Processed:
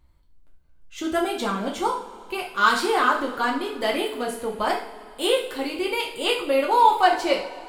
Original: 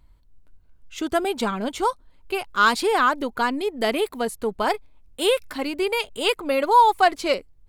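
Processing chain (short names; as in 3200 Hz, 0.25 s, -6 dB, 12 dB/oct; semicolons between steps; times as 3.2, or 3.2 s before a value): two-slope reverb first 0.48 s, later 2.8 s, from -18 dB, DRR -2 dB; gain -4.5 dB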